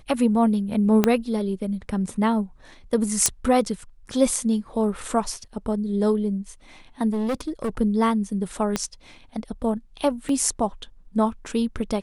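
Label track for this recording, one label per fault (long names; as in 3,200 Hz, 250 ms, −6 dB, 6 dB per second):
1.040000	1.040000	click −4 dBFS
3.260000	3.260000	click −1 dBFS
5.440000	5.440000	drop-out 4.9 ms
7.100000	7.700000	clipping −21.5 dBFS
8.760000	8.760000	click −9 dBFS
10.290000	10.290000	drop-out 2.8 ms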